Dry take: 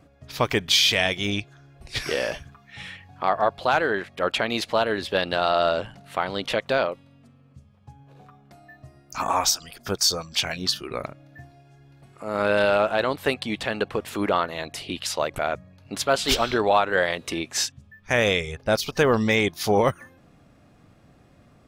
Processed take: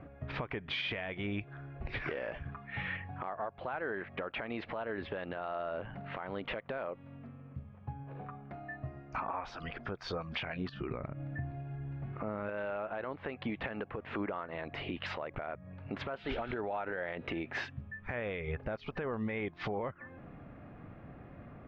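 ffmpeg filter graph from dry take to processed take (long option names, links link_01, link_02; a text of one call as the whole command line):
ffmpeg -i in.wav -filter_complex "[0:a]asettb=1/sr,asplit=3[link_01][link_02][link_03];[link_01]atrim=end=10.694[link_04];[link_02]atrim=start=10.69:end=12.49,asetpts=PTS-STARTPTS,afade=type=in:duration=0.004:curve=qsin,afade=type=out:start_time=1.796:duration=0.004:curve=qsin,bass=frequency=250:gain=8,treble=frequency=4000:gain=0,acompressor=threshold=-41dB:ratio=2:attack=3.2:release=140:knee=1:detection=peak[link_05];[link_03]atrim=start=12.486[link_06];[link_04][link_05]acrossfade=duration=0.004:curve1=hsin:curve2=qsin[link_07];[link_07][link_06]acrossfade=duration=0.004:curve1=qsin:curve2=hsin,asettb=1/sr,asplit=3[link_08][link_09][link_10];[link_08]atrim=end=16.174[link_11];[link_09]atrim=start=16.17:end=17.57,asetpts=PTS-STARTPTS,afade=type=in:duration=0.004:curve=qsin,afade=type=out:start_time=1.396:duration=0.004:curve=qsin,bandreject=frequency=1100:width=6.4,acompressor=threshold=-26dB:ratio=2.5:attack=3.2:release=140:knee=1:detection=peak[link_12];[link_10]atrim=start=17.566[link_13];[link_11][link_12]acrossfade=duration=0.004:curve1=hsin:curve2=qsin[link_14];[link_14][link_13]acrossfade=duration=0.004:curve1=qsin:curve2=hsin,lowpass=frequency=2300:width=0.5412,lowpass=frequency=2300:width=1.3066,acompressor=threshold=-32dB:ratio=12,alimiter=level_in=7.5dB:limit=-24dB:level=0:latency=1:release=157,volume=-7.5dB,volume=4.5dB" out.wav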